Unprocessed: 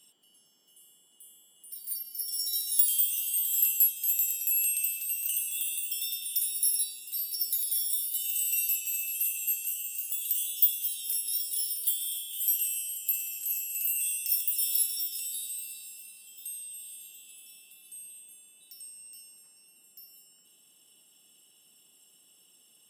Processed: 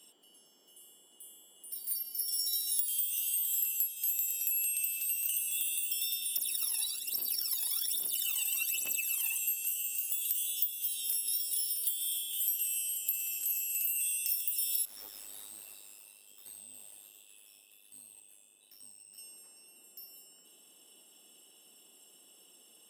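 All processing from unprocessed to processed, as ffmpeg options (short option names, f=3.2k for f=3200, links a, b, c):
-filter_complex "[0:a]asettb=1/sr,asplit=3[a][b][c];[a]atrim=end=2.844[d];[b]atrim=start=2.84:end=4.29,asetpts=PTS-STARTPTS,afade=t=in:d=0.004:c=qsin,afade=t=out:st=1.446:d=0.004:c=qsin,highpass=460,asplit=2[e][f];[f]adelay=50,volume=-14dB[g];[e][g]amix=inputs=2:normalize=0,atrim=end_sample=63945[h];[c]atrim=start=4.286[i];[d][h]acrossfade=d=0.004:c1=hsin:c2=qsin[j];[j][i]acrossfade=d=0.004:c1=qsin:c2=hsin,asettb=1/sr,asplit=3[k][l][m];[k]atrim=end=6.374[n];[l]atrim=start=6.37:end=9.38,asetpts=PTS-STARTPTS,afade=t=in:d=0.004:c=qsin,afade=t=out:st=3.006:d=0.004:c=qsin,acrossover=split=4800[o][p];[p]acompressor=threshold=-33dB:ratio=4:attack=1:release=60[q];[o][q]amix=inputs=2:normalize=0,aphaser=in_gain=1:out_gain=1:delay=1.2:decay=0.8:speed=1.2:type=triangular[r];[m]atrim=start=9.376[s];[n][r]acrossfade=d=0.004:c1=hsin:c2=qsin[t];[t][s]acrossfade=d=0.004:c1=qsin:c2=hsin,asettb=1/sr,asplit=3[u][v][w];[u]atrim=end=14.854[x];[v]atrim=start=14.85:end=19.18,asetpts=PTS-STARTPTS,afade=t=in:d=0.004:c=qsin,afade=t=out:st=4.326:d=0.004:c=qsin,flanger=delay=17:depth=6.6:speed=1.2,aeval=exprs='(tanh(141*val(0)+0.45)-tanh(0.45))/141':c=same,aeval=exprs='val(0)*sin(2*PI*51*n/s)':c=same[y];[w]atrim=start=19.176[z];[x][y]acrossfade=d=0.004:c1=hsin:c2=qsin[aa];[aa][z]acrossfade=d=0.004:c1=qsin:c2=hsin,highpass=360,tiltshelf=f=730:g=6,acompressor=threshold=-36dB:ratio=6,volume=7dB"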